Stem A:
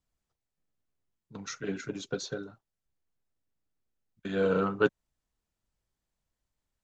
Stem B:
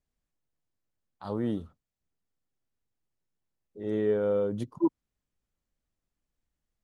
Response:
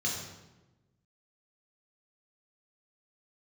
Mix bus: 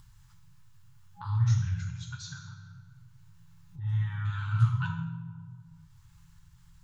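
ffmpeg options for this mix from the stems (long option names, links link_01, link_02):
-filter_complex "[0:a]volume=-4.5dB,asplit=2[link_01][link_02];[link_02]volume=-10dB[link_03];[1:a]bass=frequency=250:gain=7,treble=frequency=4000:gain=-7,bandreject=frequency=450:width=13,dynaudnorm=framelen=310:gausssize=9:maxgain=4dB,volume=-3.5dB,asplit=2[link_04][link_05];[link_05]volume=-4dB[link_06];[2:a]atrim=start_sample=2205[link_07];[link_03][link_06]amix=inputs=2:normalize=0[link_08];[link_08][link_07]afir=irnorm=-1:irlink=0[link_09];[link_01][link_04][link_09]amix=inputs=3:normalize=0,afftfilt=real='re*(1-between(b*sr/4096,180,820))':imag='im*(1-between(b*sr/4096,180,820))':win_size=4096:overlap=0.75,adynamicequalizer=threshold=0.002:dfrequency=850:dqfactor=1.5:tfrequency=850:tqfactor=1.5:attack=5:release=100:ratio=0.375:range=3.5:mode=cutabove:tftype=bell,acompressor=mode=upward:threshold=-36dB:ratio=2.5"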